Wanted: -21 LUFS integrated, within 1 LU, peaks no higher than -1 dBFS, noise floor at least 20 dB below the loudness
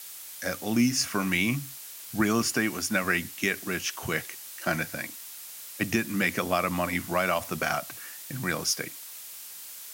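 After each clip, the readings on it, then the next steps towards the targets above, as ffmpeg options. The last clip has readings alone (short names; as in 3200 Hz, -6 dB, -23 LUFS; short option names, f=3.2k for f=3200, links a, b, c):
noise floor -43 dBFS; noise floor target -48 dBFS; loudness -28.0 LUFS; peak -10.5 dBFS; loudness target -21.0 LUFS
-> -af "afftdn=nr=6:nf=-43"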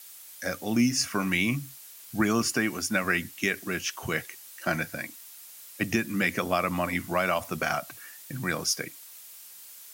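noise floor -48 dBFS; loudness -28.0 LUFS; peak -10.5 dBFS; loudness target -21.0 LUFS
-> -af "volume=7dB"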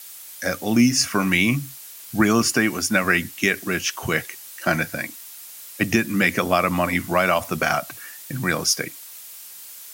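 loudness -21.0 LUFS; peak -3.5 dBFS; noise floor -41 dBFS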